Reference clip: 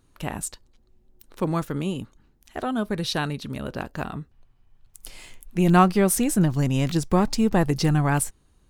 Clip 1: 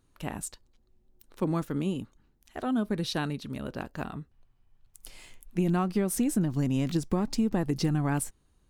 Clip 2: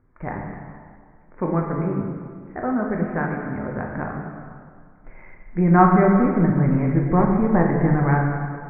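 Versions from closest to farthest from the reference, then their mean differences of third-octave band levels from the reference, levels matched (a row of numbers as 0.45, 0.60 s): 1, 2; 1.5, 11.0 dB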